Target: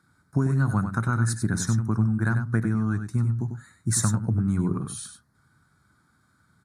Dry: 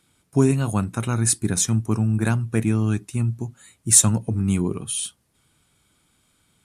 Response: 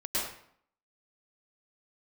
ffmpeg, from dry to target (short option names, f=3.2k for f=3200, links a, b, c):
-filter_complex "[0:a]firequalizer=gain_entry='entry(140,0);entry(480,-10);entry(1500,5);entry(2800,-27);entry(4100,-8);entry(7500,-14)':delay=0.05:min_phase=1,acompressor=threshold=-23dB:ratio=6,highpass=67,asplit=2[a][b];[b]aecho=0:1:96:0.398[c];[a][c]amix=inputs=2:normalize=0,volume=3.5dB"